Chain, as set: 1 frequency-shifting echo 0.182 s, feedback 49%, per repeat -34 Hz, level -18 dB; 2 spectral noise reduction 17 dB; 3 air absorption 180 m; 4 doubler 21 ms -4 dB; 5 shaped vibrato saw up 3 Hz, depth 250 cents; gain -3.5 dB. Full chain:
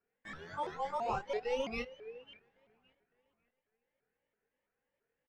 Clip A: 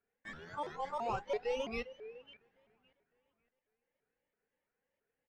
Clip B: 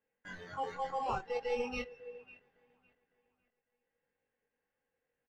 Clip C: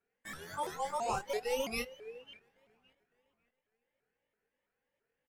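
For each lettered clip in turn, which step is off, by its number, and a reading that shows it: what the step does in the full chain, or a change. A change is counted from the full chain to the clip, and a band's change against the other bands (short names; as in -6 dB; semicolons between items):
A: 4, loudness change -1.0 LU; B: 5, 4 kHz band -2.0 dB; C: 3, 8 kHz band +13.0 dB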